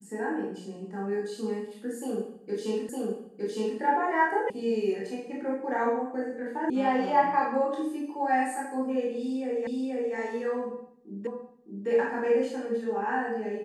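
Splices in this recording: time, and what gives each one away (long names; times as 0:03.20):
0:02.89: the same again, the last 0.91 s
0:04.50: cut off before it has died away
0:06.70: cut off before it has died away
0:09.67: the same again, the last 0.48 s
0:11.27: the same again, the last 0.61 s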